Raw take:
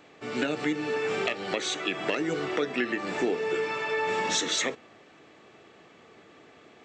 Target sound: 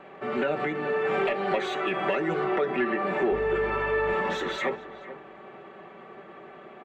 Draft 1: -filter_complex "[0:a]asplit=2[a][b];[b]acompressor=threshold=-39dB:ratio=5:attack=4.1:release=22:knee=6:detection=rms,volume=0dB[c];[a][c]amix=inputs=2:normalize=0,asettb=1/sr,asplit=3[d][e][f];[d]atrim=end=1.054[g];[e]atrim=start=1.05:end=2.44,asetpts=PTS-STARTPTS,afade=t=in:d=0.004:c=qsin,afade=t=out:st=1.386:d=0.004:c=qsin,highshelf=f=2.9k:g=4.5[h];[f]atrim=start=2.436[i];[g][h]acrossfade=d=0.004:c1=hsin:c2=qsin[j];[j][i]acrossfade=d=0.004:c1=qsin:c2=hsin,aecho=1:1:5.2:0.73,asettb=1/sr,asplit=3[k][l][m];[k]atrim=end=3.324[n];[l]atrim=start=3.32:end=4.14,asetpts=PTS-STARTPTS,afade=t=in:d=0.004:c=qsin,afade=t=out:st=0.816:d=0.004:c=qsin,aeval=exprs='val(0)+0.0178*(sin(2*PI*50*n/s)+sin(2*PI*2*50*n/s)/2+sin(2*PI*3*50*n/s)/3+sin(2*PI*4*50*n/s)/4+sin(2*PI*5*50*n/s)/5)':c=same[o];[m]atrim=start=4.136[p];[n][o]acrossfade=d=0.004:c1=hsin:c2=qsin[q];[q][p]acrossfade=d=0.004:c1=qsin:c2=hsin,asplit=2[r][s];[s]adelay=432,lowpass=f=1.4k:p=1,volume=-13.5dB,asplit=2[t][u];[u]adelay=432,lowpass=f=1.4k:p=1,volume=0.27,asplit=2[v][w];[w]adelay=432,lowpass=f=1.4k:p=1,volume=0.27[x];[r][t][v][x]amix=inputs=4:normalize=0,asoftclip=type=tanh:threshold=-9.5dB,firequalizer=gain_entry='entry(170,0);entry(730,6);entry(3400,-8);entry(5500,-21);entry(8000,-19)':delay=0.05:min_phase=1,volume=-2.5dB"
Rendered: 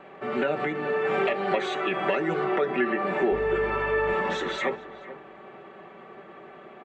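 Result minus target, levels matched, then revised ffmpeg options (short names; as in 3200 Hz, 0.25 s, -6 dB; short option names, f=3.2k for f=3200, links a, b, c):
soft clip: distortion -11 dB
-filter_complex "[0:a]asplit=2[a][b];[b]acompressor=threshold=-39dB:ratio=5:attack=4.1:release=22:knee=6:detection=rms,volume=0dB[c];[a][c]amix=inputs=2:normalize=0,asettb=1/sr,asplit=3[d][e][f];[d]atrim=end=1.054[g];[e]atrim=start=1.05:end=2.44,asetpts=PTS-STARTPTS,afade=t=in:d=0.004:c=qsin,afade=t=out:st=1.386:d=0.004:c=qsin,highshelf=f=2.9k:g=4.5[h];[f]atrim=start=2.436[i];[g][h]acrossfade=d=0.004:c1=hsin:c2=qsin[j];[j][i]acrossfade=d=0.004:c1=qsin:c2=hsin,aecho=1:1:5.2:0.73,asettb=1/sr,asplit=3[k][l][m];[k]atrim=end=3.324[n];[l]atrim=start=3.32:end=4.14,asetpts=PTS-STARTPTS,afade=t=in:d=0.004:c=qsin,afade=t=out:st=0.816:d=0.004:c=qsin,aeval=exprs='val(0)+0.0178*(sin(2*PI*50*n/s)+sin(2*PI*2*50*n/s)/2+sin(2*PI*3*50*n/s)/3+sin(2*PI*4*50*n/s)/4+sin(2*PI*5*50*n/s)/5)':c=same[o];[m]atrim=start=4.136[p];[n][o]acrossfade=d=0.004:c1=hsin:c2=qsin[q];[q][p]acrossfade=d=0.004:c1=qsin:c2=hsin,asplit=2[r][s];[s]adelay=432,lowpass=f=1.4k:p=1,volume=-13.5dB,asplit=2[t][u];[u]adelay=432,lowpass=f=1.4k:p=1,volume=0.27,asplit=2[v][w];[w]adelay=432,lowpass=f=1.4k:p=1,volume=0.27[x];[r][t][v][x]amix=inputs=4:normalize=0,asoftclip=type=tanh:threshold=-16.5dB,firequalizer=gain_entry='entry(170,0);entry(730,6);entry(3400,-8);entry(5500,-21);entry(8000,-19)':delay=0.05:min_phase=1,volume=-2.5dB"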